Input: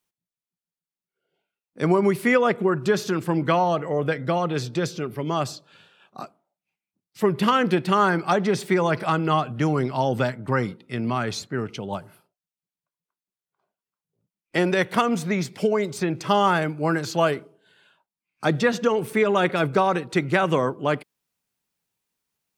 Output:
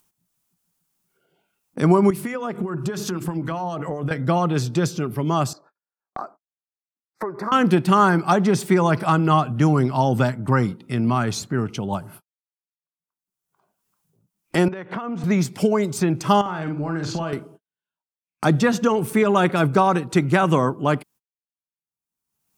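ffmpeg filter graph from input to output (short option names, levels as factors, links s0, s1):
-filter_complex "[0:a]asettb=1/sr,asplit=3[s0][s1][s2];[s0]atrim=end=2.104[s3];[s1]atrim=start=2.1:end=4.11,asetpts=PTS-STARTPTS,afade=t=in:d=0.004:c=qsin,afade=t=out:st=2.006:d=0.004:c=qsin,bandreject=f=50:t=h:w=6,bandreject=f=100:t=h:w=6,bandreject=f=150:t=h:w=6,bandreject=f=200:t=h:w=6,bandreject=f=250:t=h:w=6,bandreject=f=300:t=h:w=6,bandreject=f=350:t=h:w=6,bandreject=f=400:t=h:w=6,acompressor=threshold=0.0562:ratio=6:attack=3.2:release=140:knee=1:detection=peak,acrossover=split=1100[s4][s5];[s4]aeval=exprs='val(0)*(1-0.5/2+0.5/2*cos(2*PI*7.7*n/s))':c=same[s6];[s5]aeval=exprs='val(0)*(1-0.5/2-0.5/2*cos(2*PI*7.7*n/s))':c=same[s7];[s6][s7]amix=inputs=2:normalize=0[s8];[s2]atrim=start=4.106[s9];[s3][s8]acrossfade=d=0.004:c1=hsin:c2=qsin[s10];[s10][s9]acrossfade=d=0.004:c1=qsin:c2=hsin,asettb=1/sr,asplit=3[s11][s12][s13];[s11]atrim=end=5.534[s14];[s12]atrim=start=5.53:end=7.52,asetpts=PTS-STARTPTS,afade=t=in:d=0.004:c=qsin,afade=t=out:st=1.986:d=0.004:c=qsin,acrossover=split=340 3700:gain=0.0708 1 0.0708[s15][s16][s17];[s15][s16][s17]amix=inputs=3:normalize=0,acompressor=threshold=0.0178:ratio=2:attack=3.2:release=140:knee=1:detection=peak,asuperstop=centerf=3000:order=4:qfactor=1[s18];[s13]atrim=start=7.516[s19];[s14][s18]acrossfade=d=0.004:c1=hsin:c2=qsin[s20];[s20][s19]acrossfade=d=0.004:c1=qsin:c2=hsin,asettb=1/sr,asplit=3[s21][s22][s23];[s21]atrim=end=14.684[s24];[s22]atrim=start=14.68:end=15.24,asetpts=PTS-STARTPTS,afade=t=in:d=0.004:c=qsin,afade=t=out:st=0.556:d=0.004:c=qsin,acompressor=threshold=0.0355:ratio=16:attack=3.2:release=140:knee=1:detection=peak,highpass=190,lowpass=2300[s25];[s23]atrim=start=15.236[s26];[s24][s25]acrossfade=d=0.004:c1=hsin:c2=qsin[s27];[s27][s26]acrossfade=d=0.004:c1=qsin:c2=hsin,asettb=1/sr,asplit=3[s28][s29][s30];[s28]atrim=end=16.414[s31];[s29]atrim=start=16.41:end=17.33,asetpts=PTS-STARTPTS,afade=t=in:d=0.004:c=qsin,afade=t=out:st=0.916:d=0.004:c=qsin,lowpass=4600,acompressor=threshold=0.0447:ratio=8:attack=3.2:release=140:knee=1:detection=peak,asplit=2[s32][s33];[s33]adelay=49,volume=0.473[s34];[s32][s34]amix=inputs=2:normalize=0,atrim=end_sample=40572[s35];[s30]atrim=start=17.326[s36];[s31][s35]acrossfade=d=0.004:c1=hsin:c2=qsin[s37];[s37][s36]acrossfade=d=0.004:c1=qsin:c2=hsin,agate=range=0.00158:threshold=0.00316:ratio=16:detection=peak,equalizer=f=500:t=o:w=1:g=-7,equalizer=f=2000:t=o:w=1:g=-7,equalizer=f=4000:t=o:w=1:g=-6,acompressor=mode=upward:threshold=0.0355:ratio=2.5,volume=2.24"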